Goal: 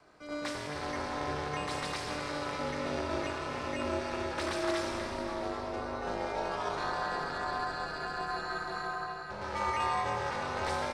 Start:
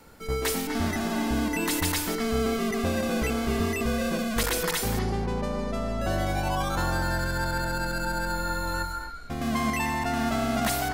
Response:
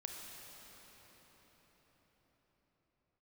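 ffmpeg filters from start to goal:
-filter_complex "[0:a]asplit=2[a][b];[b]asoftclip=type=tanh:threshold=-30.5dB,volume=-6dB[c];[a][c]amix=inputs=2:normalize=0,highpass=270,equalizer=f=490:t=q:w=4:g=3,equalizer=f=1.1k:t=q:w=4:g=4,equalizer=f=3k:t=q:w=4:g=-4,equalizer=f=6.9k:t=q:w=4:g=-8,lowpass=f=7.4k:w=0.5412,lowpass=f=7.4k:w=1.3066,aeval=exprs='0.224*(cos(1*acos(clip(val(0)/0.224,-1,1)))-cos(1*PI/2))+0.0141*(cos(2*acos(clip(val(0)/0.224,-1,1)))-cos(2*PI/2))+0.0282*(cos(3*acos(clip(val(0)/0.224,-1,1)))-cos(3*PI/2))':c=same,acrossover=split=540|2000[d][e][f];[d]asoftclip=type=hard:threshold=-32.5dB[g];[g][e][f]amix=inputs=3:normalize=0,asplit=2[h][i];[i]adelay=20,volume=-11dB[j];[h][j]amix=inputs=2:normalize=0[k];[1:a]atrim=start_sample=2205[l];[k][l]afir=irnorm=-1:irlink=0,aeval=exprs='val(0)*sin(2*PI*150*n/s)':c=same"

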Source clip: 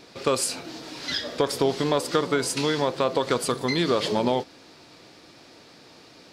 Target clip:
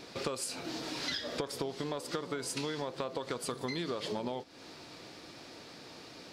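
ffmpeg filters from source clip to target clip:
-af "acompressor=threshold=-33dB:ratio=10"

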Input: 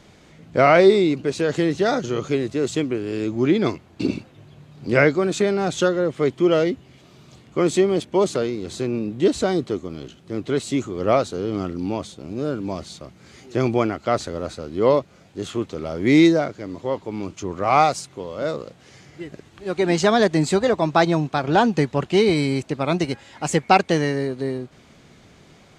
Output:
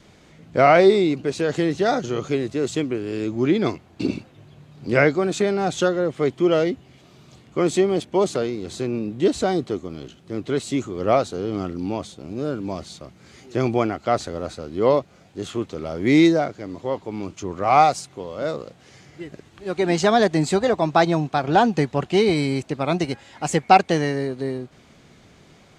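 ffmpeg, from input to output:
-af "adynamicequalizer=threshold=0.0158:dfrequency=740:dqfactor=7:tfrequency=740:tqfactor=7:attack=5:release=100:ratio=0.375:range=2.5:mode=boostabove:tftype=bell,volume=-1dB"

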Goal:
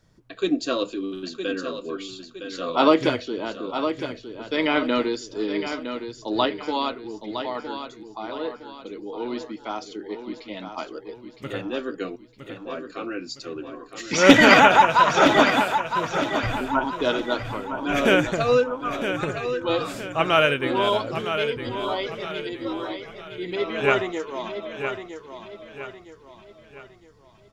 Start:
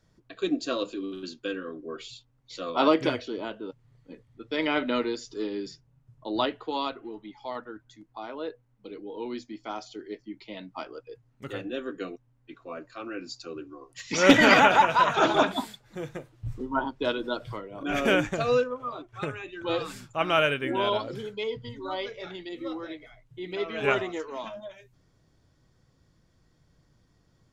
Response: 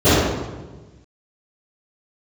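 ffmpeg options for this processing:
-af "aecho=1:1:962|1924|2886|3848:0.376|0.15|0.0601|0.0241,volume=4.5dB"

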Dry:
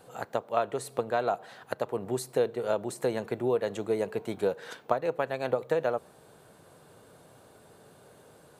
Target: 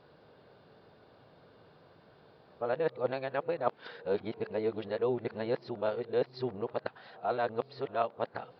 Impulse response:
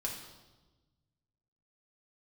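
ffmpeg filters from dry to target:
-af "areverse,aresample=11025,aresample=44100,volume=-3.5dB"

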